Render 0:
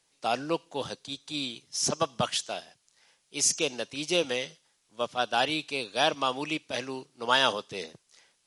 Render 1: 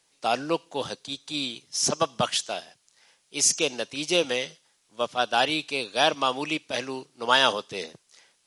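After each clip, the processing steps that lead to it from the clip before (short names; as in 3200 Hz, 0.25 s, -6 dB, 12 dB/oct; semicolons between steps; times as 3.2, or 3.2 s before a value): low shelf 150 Hz -4.5 dB; gain +3.5 dB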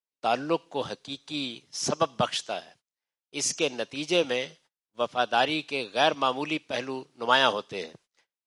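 LPF 3100 Hz 6 dB/oct; gate -56 dBFS, range -30 dB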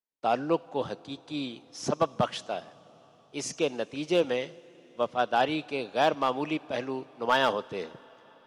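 high shelf 2000 Hz -10.5 dB; hard clip -16 dBFS, distortion -22 dB; on a send at -22 dB: reverb RT60 5.5 s, pre-delay 58 ms; on the sum: gain +1 dB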